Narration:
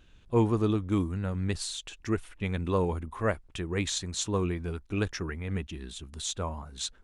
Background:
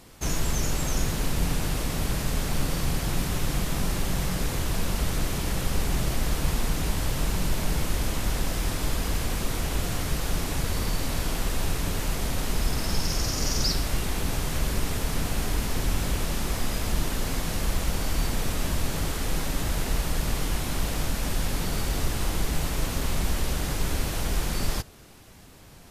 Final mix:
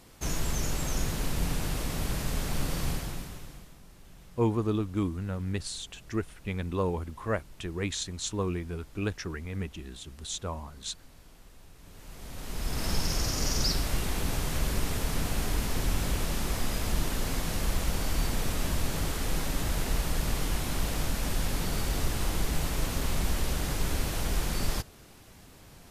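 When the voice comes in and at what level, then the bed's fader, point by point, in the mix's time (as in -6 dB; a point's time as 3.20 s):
4.05 s, -2.0 dB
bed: 2.90 s -4 dB
3.80 s -26.5 dB
11.73 s -26.5 dB
12.86 s -2.5 dB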